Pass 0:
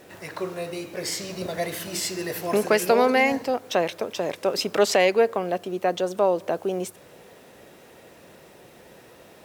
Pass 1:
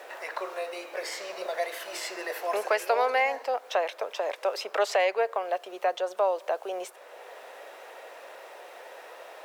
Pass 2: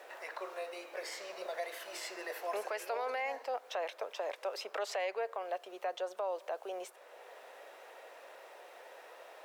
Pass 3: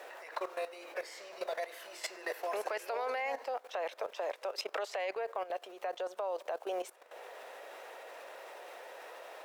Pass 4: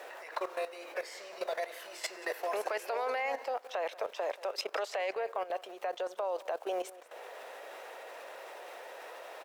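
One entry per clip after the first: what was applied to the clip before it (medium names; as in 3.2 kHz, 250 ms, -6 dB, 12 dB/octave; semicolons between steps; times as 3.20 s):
high-pass 560 Hz 24 dB/octave; treble shelf 3.4 kHz -11 dB; three bands compressed up and down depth 40%
peak limiter -20.5 dBFS, peak gain reduction 7 dB; trim -7.5 dB
level held to a coarse grid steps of 14 dB; trim +7 dB
delay 181 ms -19 dB; trim +2 dB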